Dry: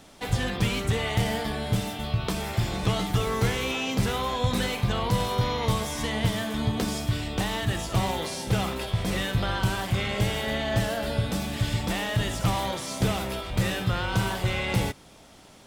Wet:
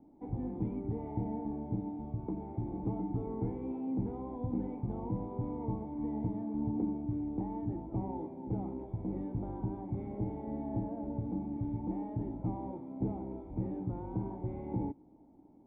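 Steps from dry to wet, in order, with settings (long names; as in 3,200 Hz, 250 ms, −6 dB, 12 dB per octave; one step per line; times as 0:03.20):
formant resonators in series u
level +2 dB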